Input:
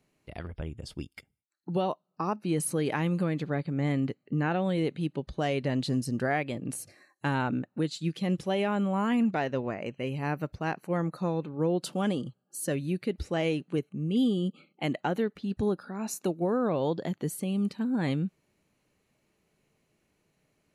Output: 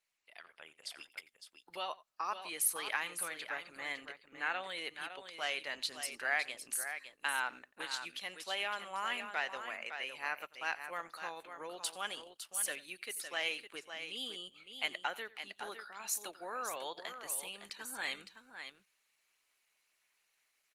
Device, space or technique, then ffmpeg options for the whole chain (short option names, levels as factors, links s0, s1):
video call: -af "highpass=f=160:p=1,highpass=1500,aecho=1:1:89|559:0.1|0.376,dynaudnorm=f=140:g=7:m=2.82,volume=0.501" -ar 48000 -c:a libopus -b:a 20k